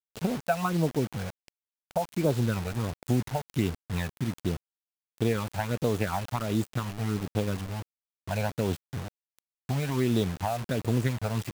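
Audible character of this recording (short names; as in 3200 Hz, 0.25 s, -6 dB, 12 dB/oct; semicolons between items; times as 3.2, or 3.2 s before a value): phasing stages 12, 1.4 Hz, lowest notch 330–2100 Hz; a quantiser's noise floor 6-bit, dither none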